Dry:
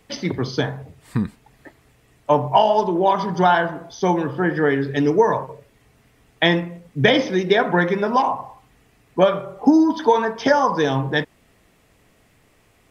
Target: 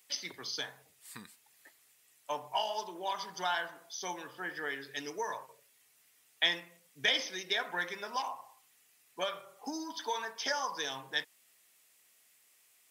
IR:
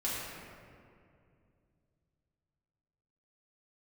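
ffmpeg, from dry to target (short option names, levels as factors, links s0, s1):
-af "aderivative"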